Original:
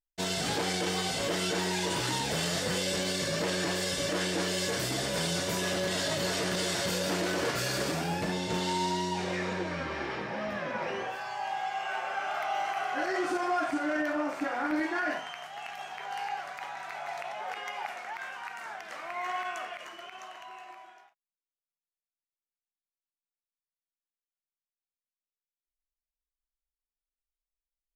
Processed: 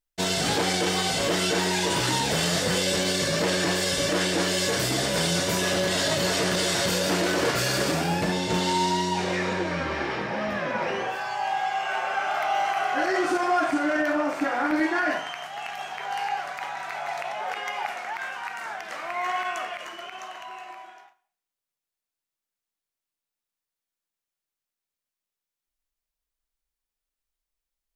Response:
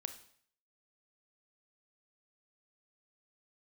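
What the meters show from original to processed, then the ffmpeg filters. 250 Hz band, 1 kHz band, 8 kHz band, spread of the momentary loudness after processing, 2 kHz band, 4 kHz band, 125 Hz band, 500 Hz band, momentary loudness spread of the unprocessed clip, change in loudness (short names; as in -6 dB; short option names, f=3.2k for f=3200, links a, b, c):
+6.0 dB, +6.5 dB, +6.5 dB, 10 LU, +6.5 dB, +6.5 dB, +6.0 dB, +6.0 dB, 10 LU, +6.0 dB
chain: -filter_complex "[0:a]asplit=2[a][b];[1:a]atrim=start_sample=2205[c];[b][c]afir=irnorm=-1:irlink=0,volume=1dB[d];[a][d]amix=inputs=2:normalize=0,volume=1dB"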